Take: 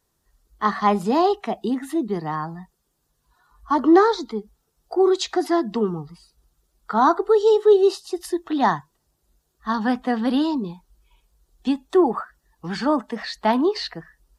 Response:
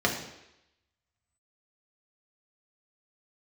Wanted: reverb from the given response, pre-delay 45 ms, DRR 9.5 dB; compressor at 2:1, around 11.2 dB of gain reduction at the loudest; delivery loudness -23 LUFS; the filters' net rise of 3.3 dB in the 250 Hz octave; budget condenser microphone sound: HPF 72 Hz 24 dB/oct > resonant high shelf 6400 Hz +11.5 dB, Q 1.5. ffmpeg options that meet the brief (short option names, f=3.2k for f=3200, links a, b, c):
-filter_complex "[0:a]equalizer=f=250:t=o:g=4.5,acompressor=threshold=-29dB:ratio=2,asplit=2[a][b];[1:a]atrim=start_sample=2205,adelay=45[c];[b][c]afir=irnorm=-1:irlink=0,volume=-22.5dB[d];[a][d]amix=inputs=2:normalize=0,highpass=f=72:w=0.5412,highpass=f=72:w=1.3066,highshelf=f=6.4k:t=q:w=1.5:g=11.5,volume=4dB"